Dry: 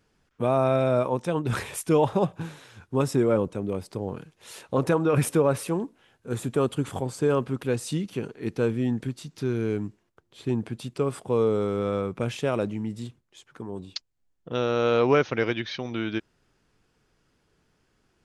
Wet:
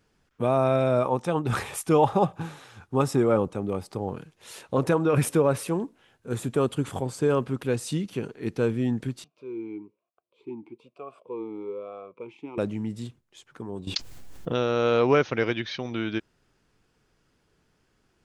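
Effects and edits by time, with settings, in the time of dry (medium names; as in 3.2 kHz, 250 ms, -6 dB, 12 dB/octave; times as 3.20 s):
1.02–4.10 s: small resonant body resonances 810/1200 Hz, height 8 dB, ringing for 25 ms
9.24–12.58 s: talking filter a-u 1.1 Hz
13.87–14.63 s: level flattener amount 70%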